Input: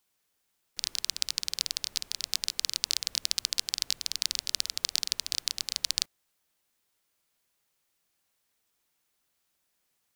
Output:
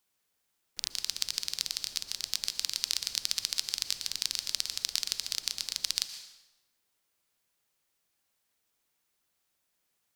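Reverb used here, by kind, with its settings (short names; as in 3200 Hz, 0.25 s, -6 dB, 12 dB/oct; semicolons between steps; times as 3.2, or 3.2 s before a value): plate-style reverb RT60 1 s, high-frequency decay 0.8×, pre-delay 0.105 s, DRR 10 dB; gain -2 dB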